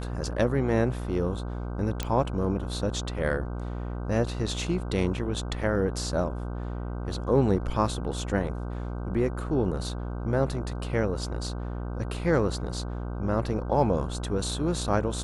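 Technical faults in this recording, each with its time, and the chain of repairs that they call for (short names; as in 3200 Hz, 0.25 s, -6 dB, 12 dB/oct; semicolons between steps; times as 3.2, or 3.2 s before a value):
buzz 60 Hz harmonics 26 -33 dBFS
2.03 pop -14 dBFS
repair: de-click; de-hum 60 Hz, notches 26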